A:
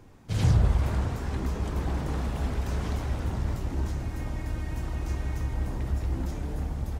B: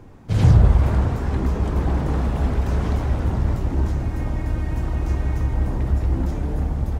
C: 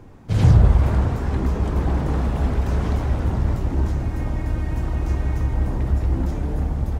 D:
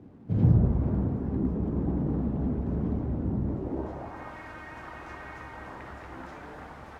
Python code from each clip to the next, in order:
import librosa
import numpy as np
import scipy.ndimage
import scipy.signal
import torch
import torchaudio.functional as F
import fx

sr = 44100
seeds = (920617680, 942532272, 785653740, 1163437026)

y1 = fx.high_shelf(x, sr, hz=2200.0, db=-9.0)
y1 = y1 * 10.0 ** (8.5 / 20.0)
y2 = y1
y3 = fx.quant_dither(y2, sr, seeds[0], bits=8, dither='none')
y3 = fx.filter_sweep_bandpass(y3, sr, from_hz=230.0, to_hz=1500.0, start_s=3.42, end_s=4.35, q=1.3)